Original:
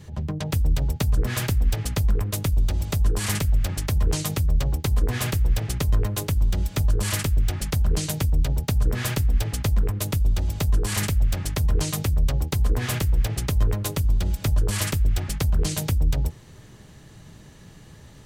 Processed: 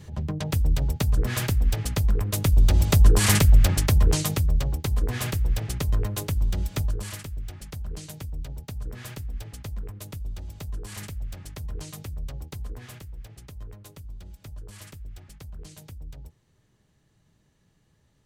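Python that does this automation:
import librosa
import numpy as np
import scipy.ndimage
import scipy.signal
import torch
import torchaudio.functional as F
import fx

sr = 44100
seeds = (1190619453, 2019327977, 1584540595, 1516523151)

y = fx.gain(x, sr, db=fx.line((2.23, -1.0), (2.77, 6.0), (3.65, 6.0), (4.74, -3.0), (6.77, -3.0), (7.2, -13.0), (12.55, -13.0), (13.1, -19.5)))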